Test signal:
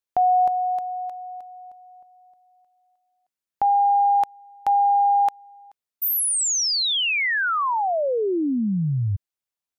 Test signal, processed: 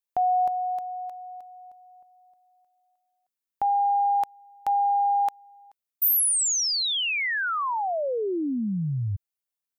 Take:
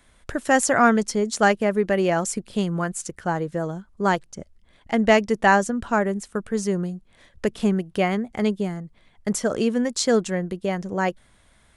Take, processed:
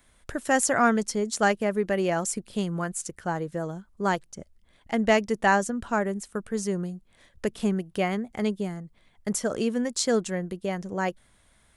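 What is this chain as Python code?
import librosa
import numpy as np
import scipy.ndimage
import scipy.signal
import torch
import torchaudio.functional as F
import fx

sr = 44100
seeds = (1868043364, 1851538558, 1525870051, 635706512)

y = fx.high_shelf(x, sr, hz=9700.0, db=8.5)
y = F.gain(torch.from_numpy(y), -4.5).numpy()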